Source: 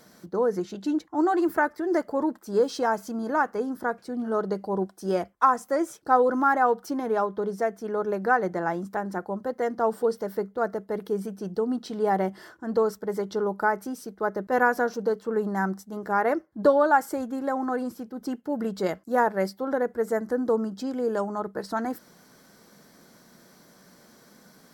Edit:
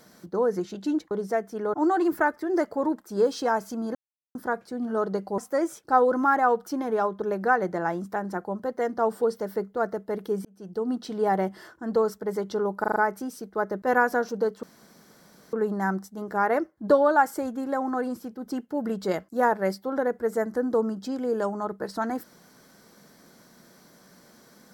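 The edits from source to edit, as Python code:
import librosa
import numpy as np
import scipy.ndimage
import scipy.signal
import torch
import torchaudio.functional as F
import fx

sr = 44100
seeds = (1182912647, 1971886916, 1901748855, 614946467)

y = fx.edit(x, sr, fx.silence(start_s=3.32, length_s=0.4),
    fx.cut(start_s=4.75, length_s=0.81),
    fx.move(start_s=7.4, length_s=0.63, to_s=1.11),
    fx.fade_in_span(start_s=11.26, length_s=0.47),
    fx.stutter(start_s=13.61, slice_s=0.04, count=5),
    fx.insert_room_tone(at_s=15.28, length_s=0.9), tone=tone)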